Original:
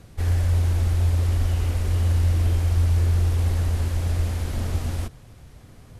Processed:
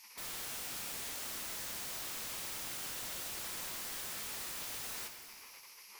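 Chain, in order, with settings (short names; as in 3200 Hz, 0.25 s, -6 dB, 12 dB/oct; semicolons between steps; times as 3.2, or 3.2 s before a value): spectral gate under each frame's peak -30 dB weak; ripple EQ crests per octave 0.83, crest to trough 11 dB; in parallel at +3 dB: compressor 16:1, threshold -48 dBFS, peak gain reduction 14.5 dB; on the sum: wrapped overs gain 35.5 dB; plate-style reverb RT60 2.1 s, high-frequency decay 0.9×, DRR 5 dB; gain -3 dB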